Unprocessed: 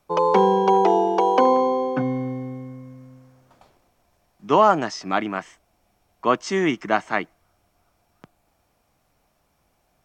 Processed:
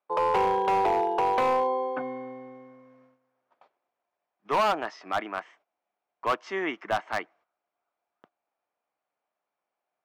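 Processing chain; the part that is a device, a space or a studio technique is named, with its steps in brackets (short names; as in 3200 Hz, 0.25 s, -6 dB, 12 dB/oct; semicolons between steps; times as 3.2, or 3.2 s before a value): walkie-talkie (BPF 490–2500 Hz; hard clip -16.5 dBFS, distortion -10 dB; gate -55 dBFS, range -12 dB); gain -3 dB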